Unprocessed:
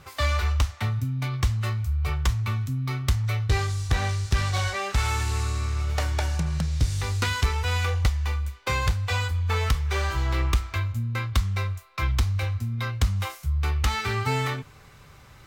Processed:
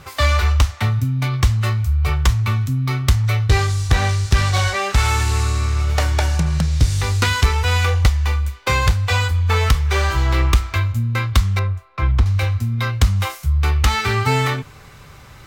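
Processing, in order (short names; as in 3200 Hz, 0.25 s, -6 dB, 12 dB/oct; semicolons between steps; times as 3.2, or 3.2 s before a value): 11.59–12.26 LPF 1100 Hz 6 dB/oct; gain +8 dB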